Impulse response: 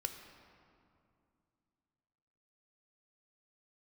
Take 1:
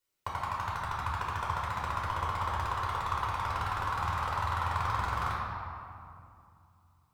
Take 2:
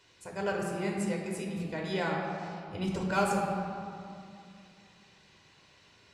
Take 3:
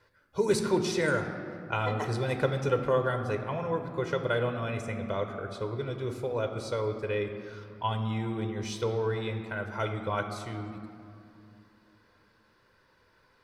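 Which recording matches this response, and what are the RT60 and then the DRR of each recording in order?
3; 2.4, 2.5, 2.5 seconds; −6.0, −1.5, 5.5 decibels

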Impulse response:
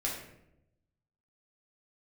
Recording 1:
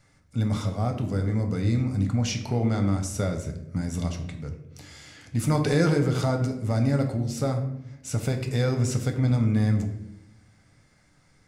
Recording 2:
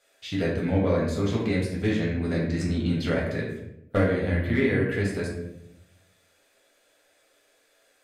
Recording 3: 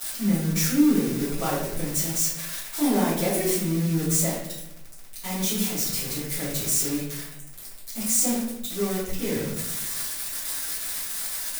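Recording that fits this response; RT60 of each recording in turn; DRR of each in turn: 2; 0.85, 0.85, 0.80 seconds; 4.0, −4.5, −13.5 decibels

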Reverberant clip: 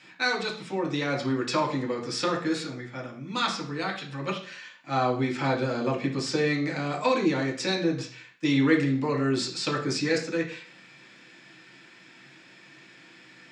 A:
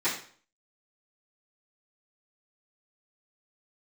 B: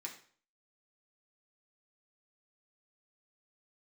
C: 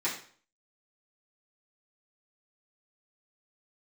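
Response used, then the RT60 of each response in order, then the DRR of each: B; 0.50, 0.50, 0.50 seconds; −15.5, −1.5, −10.0 decibels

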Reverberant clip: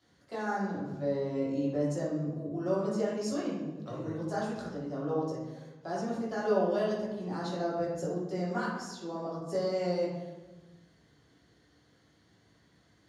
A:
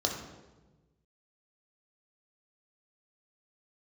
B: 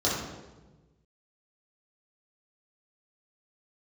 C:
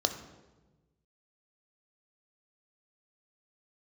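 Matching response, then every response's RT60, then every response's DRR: B; 1.2, 1.2, 1.2 seconds; 0.5, −8.0, 6.5 decibels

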